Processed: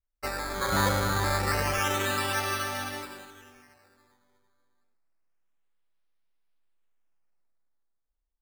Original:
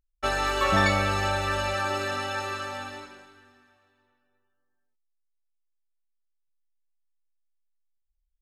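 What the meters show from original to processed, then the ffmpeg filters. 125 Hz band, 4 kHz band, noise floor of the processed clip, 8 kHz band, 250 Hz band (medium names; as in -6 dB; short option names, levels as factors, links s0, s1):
0.0 dB, -1.0 dB, -81 dBFS, +4.5 dB, -1.5 dB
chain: -af "dynaudnorm=f=170:g=11:m=3.55,adynamicequalizer=threshold=0.0282:dfrequency=640:dqfactor=0.94:tfrequency=640:tqfactor=0.94:attack=5:release=100:ratio=0.375:range=2.5:mode=cutabove:tftype=bell,acrusher=samples=11:mix=1:aa=0.000001:lfo=1:lforange=11:lforate=0.28,volume=0.473"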